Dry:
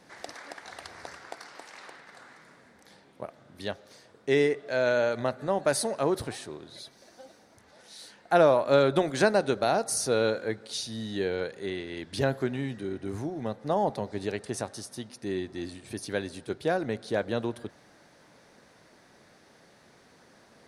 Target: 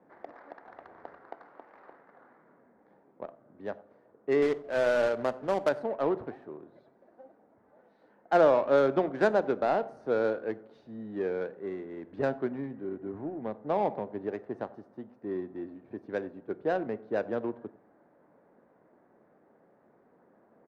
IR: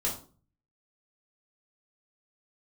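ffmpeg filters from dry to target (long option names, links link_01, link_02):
-filter_complex "[0:a]acrossover=split=190 2100:gain=0.2 1 0.178[link_01][link_02][link_03];[link_01][link_02][link_03]amix=inputs=3:normalize=0,asettb=1/sr,asplit=3[link_04][link_05][link_06];[link_04]atrim=end=4.424[link_07];[link_05]atrim=start=4.42:end=5.69,asetpts=PTS-STARTPTS,afade=type=in:duration=0.004:curve=qsin,afade=type=out:start_time=1.266:duration=0.004:curve=qsin,acrusher=bits=2:mode=log:mix=0:aa=0.000001[link_08];[link_06]atrim=start=5.686[link_09];[link_07][link_08]acrossfade=duration=0.004:curve1=hsin:curve2=qsin[link_10];[link_10][link_09]acrossfade=duration=0.004:curve1=qsin:curve2=hsin,asplit=2[link_11][link_12];[link_12]adelay=93.29,volume=-19dB,highshelf=frequency=4000:gain=-2.1[link_13];[link_11][link_13]amix=inputs=2:normalize=0,adynamicsmooth=sensitivity=2:basefreq=1100,asplit=2[link_14][link_15];[1:a]atrim=start_sample=2205,adelay=26[link_16];[link_15][link_16]afir=irnorm=-1:irlink=0,volume=-24.5dB[link_17];[link_14][link_17]amix=inputs=2:normalize=0,volume=-1dB"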